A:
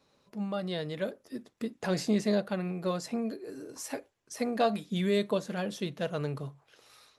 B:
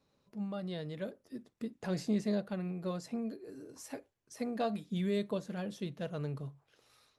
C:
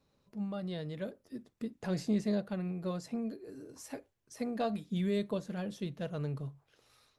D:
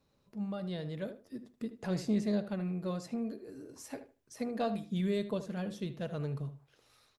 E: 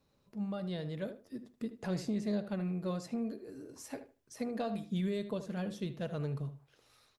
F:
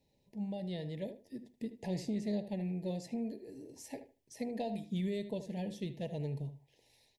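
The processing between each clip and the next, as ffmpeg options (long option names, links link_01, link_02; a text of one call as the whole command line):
ffmpeg -i in.wav -af "lowshelf=frequency=280:gain=8,volume=-9dB" out.wav
ffmpeg -i in.wav -af "lowshelf=frequency=87:gain=7.5" out.wav
ffmpeg -i in.wav -filter_complex "[0:a]asplit=2[link_01][link_02];[link_02]adelay=77,lowpass=frequency=2800:poles=1,volume=-11.5dB,asplit=2[link_03][link_04];[link_04]adelay=77,lowpass=frequency=2800:poles=1,volume=0.2,asplit=2[link_05][link_06];[link_06]adelay=77,lowpass=frequency=2800:poles=1,volume=0.2[link_07];[link_01][link_03][link_05][link_07]amix=inputs=4:normalize=0" out.wav
ffmpeg -i in.wav -af "alimiter=level_in=2.5dB:limit=-24dB:level=0:latency=1:release=172,volume=-2.5dB" out.wav
ffmpeg -i in.wav -af "asuperstop=centerf=1300:order=12:qfactor=1.7,volume=-1.5dB" out.wav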